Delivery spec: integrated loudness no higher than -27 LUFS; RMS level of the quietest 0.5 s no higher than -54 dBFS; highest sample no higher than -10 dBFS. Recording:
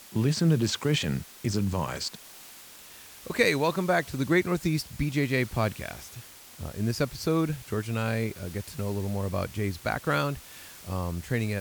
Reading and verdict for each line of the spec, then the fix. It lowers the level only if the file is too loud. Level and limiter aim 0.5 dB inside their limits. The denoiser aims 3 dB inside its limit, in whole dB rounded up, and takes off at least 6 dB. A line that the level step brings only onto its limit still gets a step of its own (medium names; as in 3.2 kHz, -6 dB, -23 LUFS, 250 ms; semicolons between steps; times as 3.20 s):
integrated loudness -28.5 LUFS: pass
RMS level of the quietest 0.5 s -48 dBFS: fail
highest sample -8.5 dBFS: fail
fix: noise reduction 9 dB, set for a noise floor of -48 dBFS; peak limiter -10.5 dBFS